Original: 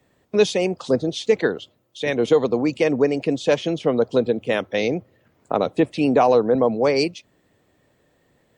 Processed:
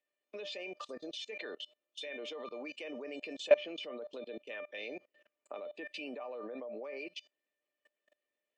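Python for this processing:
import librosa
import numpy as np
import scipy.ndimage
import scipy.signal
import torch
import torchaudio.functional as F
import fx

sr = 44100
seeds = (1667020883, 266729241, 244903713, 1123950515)

y = scipy.signal.sosfilt(scipy.signal.butter(4, 280.0, 'highpass', fs=sr, output='sos'), x)
y = fx.peak_eq(y, sr, hz=2600.0, db=11.0, octaves=0.76)
y = fx.comb_fb(y, sr, f0_hz=600.0, decay_s=0.18, harmonics='all', damping=0.0, mix_pct=90)
y = fx.env_lowpass_down(y, sr, base_hz=2000.0, full_db=-27.0)
y = fx.level_steps(y, sr, step_db=24)
y = y * librosa.db_to_amplitude(5.5)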